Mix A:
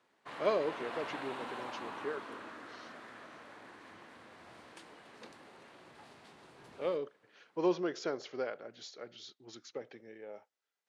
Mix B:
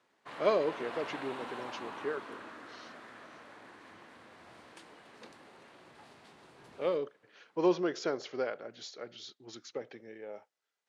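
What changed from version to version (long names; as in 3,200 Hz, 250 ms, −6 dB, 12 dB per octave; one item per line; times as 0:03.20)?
speech +3.0 dB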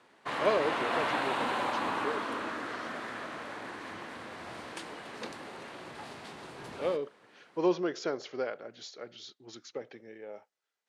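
background +11.5 dB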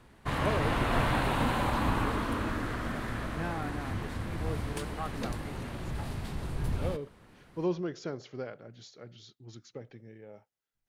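first voice −7.0 dB
second voice: unmuted
master: remove band-pass filter 380–7,400 Hz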